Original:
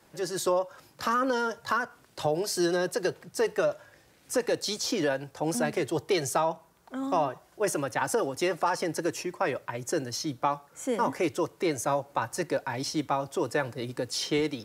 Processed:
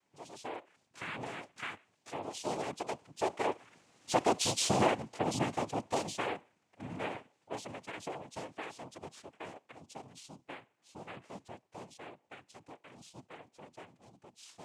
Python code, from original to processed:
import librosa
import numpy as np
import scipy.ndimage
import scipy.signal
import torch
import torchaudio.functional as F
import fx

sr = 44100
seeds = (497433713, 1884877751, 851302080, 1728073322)

y = fx.doppler_pass(x, sr, speed_mps=19, closest_m=12.0, pass_at_s=4.54)
y = fx.noise_vocoder(y, sr, seeds[0], bands=4)